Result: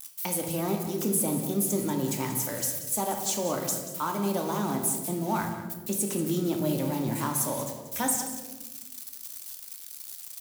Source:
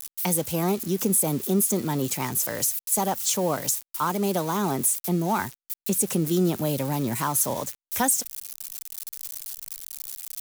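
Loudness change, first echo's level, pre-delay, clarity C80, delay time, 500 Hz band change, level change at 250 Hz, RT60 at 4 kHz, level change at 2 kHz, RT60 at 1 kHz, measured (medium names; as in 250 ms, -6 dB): -4.0 dB, -12.5 dB, 3 ms, 7.0 dB, 184 ms, -3.5 dB, -3.0 dB, 0.80 s, -4.5 dB, 1.0 s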